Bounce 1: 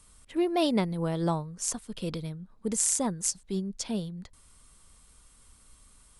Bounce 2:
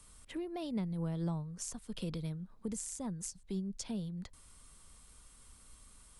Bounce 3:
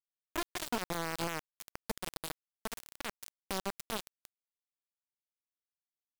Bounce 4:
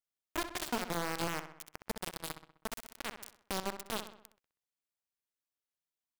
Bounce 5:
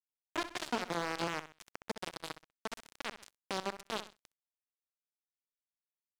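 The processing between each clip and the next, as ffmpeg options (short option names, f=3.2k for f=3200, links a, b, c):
-filter_complex "[0:a]acrossover=split=170[a][b];[b]acompressor=threshold=-39dB:ratio=10[c];[a][c]amix=inputs=2:normalize=0,volume=-1dB"
-af "alimiter=level_in=11dB:limit=-24dB:level=0:latency=1:release=108,volume=-11dB,acrusher=bits=5:mix=0:aa=0.000001,volume=6dB"
-filter_complex "[0:a]asplit=2[a][b];[b]adelay=64,lowpass=f=3.9k:p=1,volume=-9.5dB,asplit=2[c][d];[d]adelay=64,lowpass=f=3.9k:p=1,volume=0.52,asplit=2[e][f];[f]adelay=64,lowpass=f=3.9k:p=1,volume=0.52,asplit=2[g][h];[h]adelay=64,lowpass=f=3.9k:p=1,volume=0.52,asplit=2[i][j];[j]adelay=64,lowpass=f=3.9k:p=1,volume=0.52,asplit=2[k][l];[l]adelay=64,lowpass=f=3.9k:p=1,volume=0.52[m];[a][c][e][g][i][k][m]amix=inputs=7:normalize=0"
-af "highpass=130,lowpass=5.9k,aeval=exprs='sgn(val(0))*max(abs(val(0))-0.00376,0)':c=same,volume=1.5dB"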